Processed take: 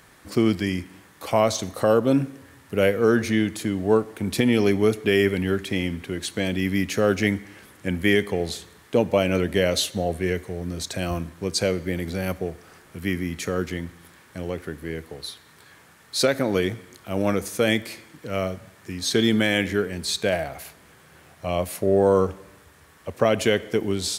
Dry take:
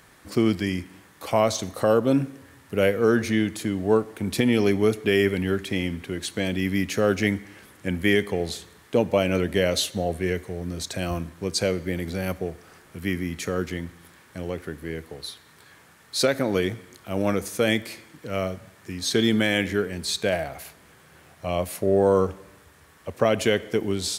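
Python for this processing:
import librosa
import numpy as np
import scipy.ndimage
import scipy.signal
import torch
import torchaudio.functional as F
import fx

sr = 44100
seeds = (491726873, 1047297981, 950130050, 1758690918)

y = F.gain(torch.from_numpy(x), 1.0).numpy()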